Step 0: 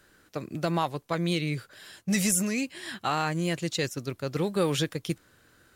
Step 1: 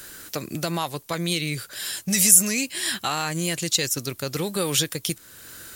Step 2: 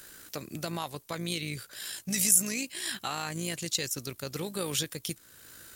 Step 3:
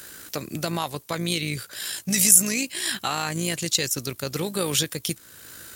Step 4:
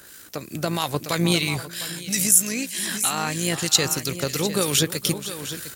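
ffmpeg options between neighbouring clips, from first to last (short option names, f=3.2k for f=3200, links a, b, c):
-filter_complex "[0:a]asplit=2[a][b];[b]alimiter=limit=-23dB:level=0:latency=1:release=126,volume=2.5dB[c];[a][c]amix=inputs=2:normalize=0,acompressor=threshold=-45dB:ratio=1.5,crystalizer=i=4:c=0,volume=4dB"
-af "tremolo=f=56:d=0.4,volume=-6.5dB"
-af "highpass=42,volume=7.5dB"
-filter_complex "[0:a]aecho=1:1:476|705:0.15|0.266,acrossover=split=1700[a][b];[a]aeval=exprs='val(0)*(1-0.5/2+0.5/2*cos(2*PI*3.1*n/s))':c=same[c];[b]aeval=exprs='val(0)*(1-0.5/2-0.5/2*cos(2*PI*3.1*n/s))':c=same[d];[c][d]amix=inputs=2:normalize=0,dynaudnorm=f=310:g=5:m=11.5dB,volume=-1dB"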